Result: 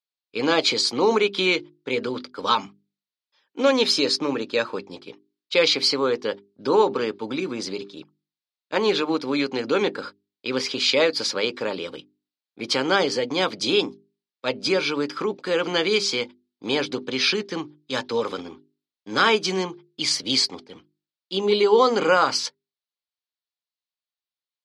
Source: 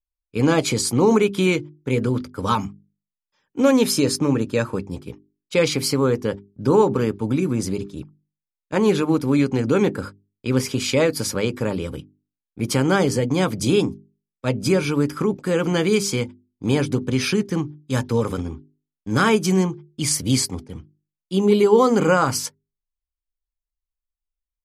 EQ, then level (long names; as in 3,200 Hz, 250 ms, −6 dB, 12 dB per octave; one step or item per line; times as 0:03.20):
high-pass filter 390 Hz 12 dB per octave
low-pass with resonance 4,200 Hz, resonance Q 2.9
0.0 dB